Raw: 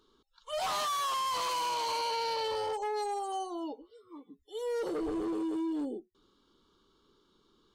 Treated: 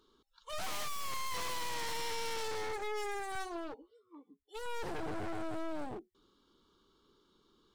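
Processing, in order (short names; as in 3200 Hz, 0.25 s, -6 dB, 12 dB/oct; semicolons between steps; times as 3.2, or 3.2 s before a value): one-sided fold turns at -40.5 dBFS; 3.35–4.66 three-band expander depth 70%; gain -1.5 dB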